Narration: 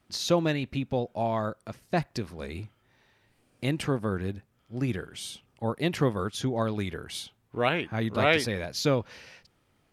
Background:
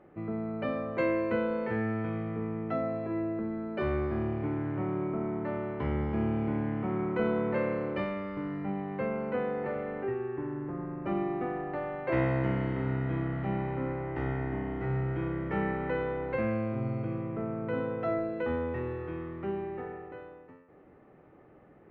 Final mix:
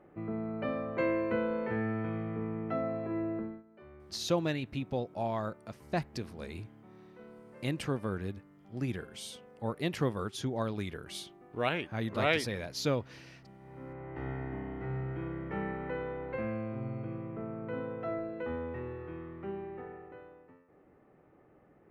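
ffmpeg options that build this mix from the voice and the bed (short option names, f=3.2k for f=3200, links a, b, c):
-filter_complex "[0:a]adelay=4000,volume=-5.5dB[a];[1:a]volume=16dB,afade=t=out:st=3.37:d=0.26:silence=0.0841395,afade=t=in:st=13.59:d=0.72:silence=0.125893[b];[a][b]amix=inputs=2:normalize=0"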